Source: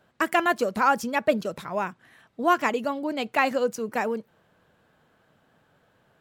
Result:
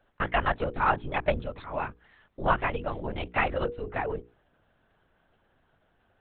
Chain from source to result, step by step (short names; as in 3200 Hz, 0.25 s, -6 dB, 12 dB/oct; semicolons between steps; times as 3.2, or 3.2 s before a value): added harmonics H 3 -26 dB, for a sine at -9 dBFS; LPC vocoder at 8 kHz whisper; notches 60/120/180/240/300/360/420/480 Hz; gain -2.5 dB